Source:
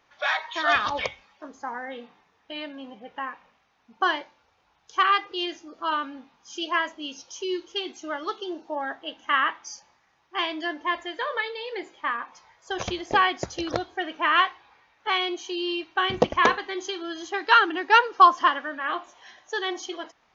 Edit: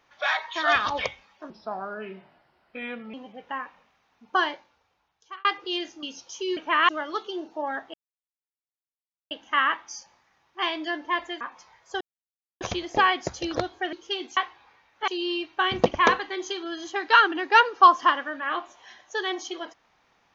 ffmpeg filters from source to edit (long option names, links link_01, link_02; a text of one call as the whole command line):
ffmpeg -i in.wav -filter_complex "[0:a]asplit=13[link_01][link_02][link_03][link_04][link_05][link_06][link_07][link_08][link_09][link_10][link_11][link_12][link_13];[link_01]atrim=end=1.504[link_14];[link_02]atrim=start=1.5:end=2.81,asetpts=PTS-STARTPTS,asetrate=35280,aresample=44100[link_15];[link_03]atrim=start=2.806:end=5.12,asetpts=PTS-STARTPTS,afade=type=out:start_time=1.364:duration=0.95[link_16];[link_04]atrim=start=5.12:end=5.702,asetpts=PTS-STARTPTS,afade=type=in:duration=0.004:curve=hsin[link_17];[link_05]atrim=start=7.038:end=7.582[link_18];[link_06]atrim=start=14.088:end=14.412[link_19];[link_07]atrim=start=8.018:end=9.07,asetpts=PTS-STARTPTS,afade=type=out:start_time=1.048:duration=0.004:curve=hsin,apad=pad_dur=1.37[link_20];[link_08]atrim=start=9.07:end=11.172,asetpts=PTS-STARTPTS,afade=type=in:duration=0.004:curve=hsin[link_21];[link_09]atrim=start=12.168:end=12.77,asetpts=PTS-STARTPTS,afade=type=out:start_time=0.598:duration=0.004:curve=hsin,apad=pad_dur=0.6[link_22];[link_10]atrim=start=12.77:end=14.092,asetpts=PTS-STARTPTS,afade=type=in:duration=0.004:curve=hsin[link_23];[link_11]atrim=start=7.578:end=8.022[link_24];[link_12]atrim=start=14.408:end=15.122[link_25];[link_13]atrim=start=15.458[link_26];[link_14][link_15]acrossfade=duration=0.004:curve1=hsin:curve2=hsin[link_27];[link_16][link_17]concat=n=2:v=0:a=1[link_28];[link_27][link_28]acrossfade=duration=0.004:curve1=hsin:curve2=hsin[link_29];[link_29][link_18]acrossfade=duration=0.004:curve1=hsin:curve2=hsin[link_30];[link_30][link_19]acrossfade=duration=0.004:curve1=hsin:curve2=hsin[link_31];[link_20][link_21]concat=n=2:v=0:a=1[link_32];[link_31][link_32]acrossfade=duration=0.004:curve1=hsin:curve2=hsin[link_33];[link_22][link_23]concat=n=2:v=0:a=1[link_34];[link_33][link_34]acrossfade=duration=0.004:curve1=hsin:curve2=hsin[link_35];[link_35][link_24]acrossfade=duration=0.004:curve1=hsin:curve2=hsin[link_36];[link_36][link_25]acrossfade=duration=0.004:curve1=hsin:curve2=hsin[link_37];[link_37][link_26]acrossfade=duration=0.004:curve1=hsin:curve2=hsin" out.wav